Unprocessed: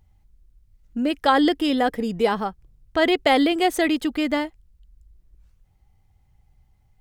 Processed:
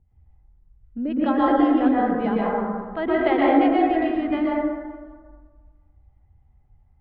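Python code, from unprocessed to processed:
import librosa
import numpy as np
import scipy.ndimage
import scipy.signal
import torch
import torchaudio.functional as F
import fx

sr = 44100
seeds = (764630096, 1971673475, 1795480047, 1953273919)

y = fx.high_shelf(x, sr, hz=5800.0, db=-10.0)
y = fx.harmonic_tremolo(y, sr, hz=2.9, depth_pct=70, crossover_hz=540.0)
y = fx.air_absorb(y, sr, metres=450.0)
y = fx.echo_feedback(y, sr, ms=198, feedback_pct=42, wet_db=-21)
y = fx.rev_plate(y, sr, seeds[0], rt60_s=1.6, hf_ratio=0.3, predelay_ms=105, drr_db=-6.0)
y = F.gain(torch.from_numpy(y), -2.5).numpy()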